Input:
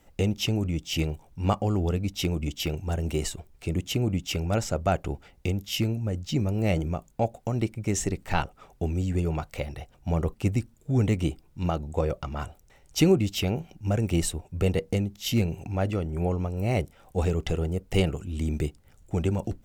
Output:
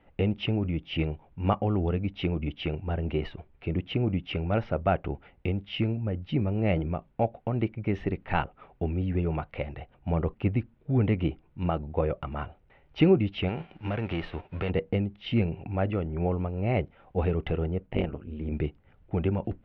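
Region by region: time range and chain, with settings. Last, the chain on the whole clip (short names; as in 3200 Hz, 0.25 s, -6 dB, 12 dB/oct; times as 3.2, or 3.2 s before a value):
13.48–14.69 spectral whitening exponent 0.6 + compressor 2.5:1, threshold -27 dBFS
17.86–18.52 high shelf 4600 Hz -10.5 dB + AM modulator 150 Hz, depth 90%
whole clip: inverse Chebyshev low-pass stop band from 6900 Hz, stop band 50 dB; low shelf 67 Hz -5.5 dB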